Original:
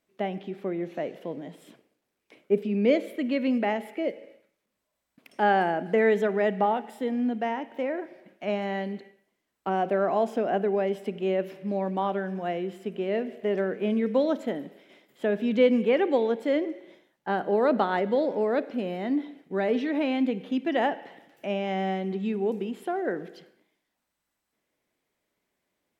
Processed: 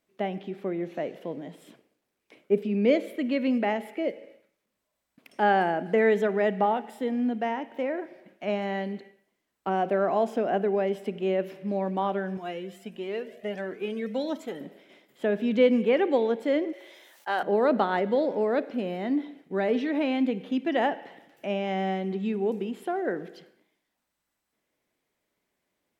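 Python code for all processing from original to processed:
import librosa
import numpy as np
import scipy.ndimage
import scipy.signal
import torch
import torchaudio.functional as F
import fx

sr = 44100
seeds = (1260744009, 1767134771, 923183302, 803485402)

y = fx.chain(x, sr, fx.high_shelf(hz=3200.0, db=9.0),
    fx.comb_cascade(direction='rising', hz=1.5), at=(12.37, 14.61))
y = fx.chain(y, sr, fx.highpass(hz=570.0, slope=12),
    fx.high_shelf(hz=3100.0, db=11.0),
    fx.sustainer(db_per_s=26.0), at=(16.73, 17.43))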